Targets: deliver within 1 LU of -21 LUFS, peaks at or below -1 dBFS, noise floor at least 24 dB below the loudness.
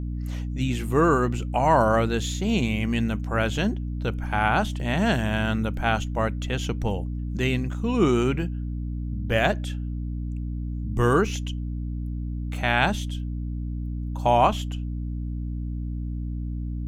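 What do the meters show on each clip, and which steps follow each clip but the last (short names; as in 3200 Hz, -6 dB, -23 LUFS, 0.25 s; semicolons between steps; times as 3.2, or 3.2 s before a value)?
hum 60 Hz; harmonics up to 300 Hz; hum level -27 dBFS; loudness -25.5 LUFS; peak -6.0 dBFS; loudness target -21.0 LUFS
-> de-hum 60 Hz, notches 5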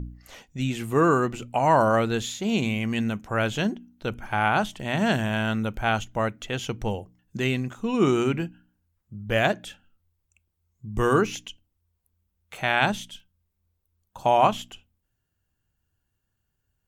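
hum none; loudness -25.0 LUFS; peak -5.5 dBFS; loudness target -21.0 LUFS
-> gain +4 dB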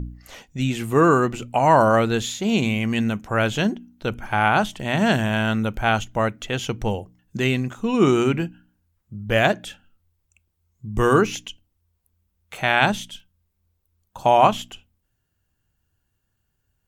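loudness -21.0 LUFS; peak -1.5 dBFS; noise floor -74 dBFS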